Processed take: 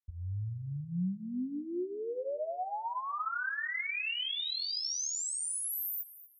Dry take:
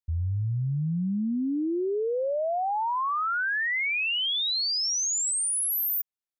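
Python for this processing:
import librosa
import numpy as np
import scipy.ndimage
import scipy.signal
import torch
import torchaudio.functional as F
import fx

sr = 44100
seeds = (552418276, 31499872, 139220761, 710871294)

p1 = fx.lowpass(x, sr, hz=5500.0, slope=24, at=(3.1, 3.66))
p2 = p1 + fx.echo_feedback(p1, sr, ms=238, feedback_pct=29, wet_db=-16.5, dry=0)
p3 = fx.chorus_voices(p2, sr, voices=4, hz=0.37, base_ms=19, depth_ms=3.0, mix_pct=45)
y = p3 * 10.0 ** (-5.5 / 20.0)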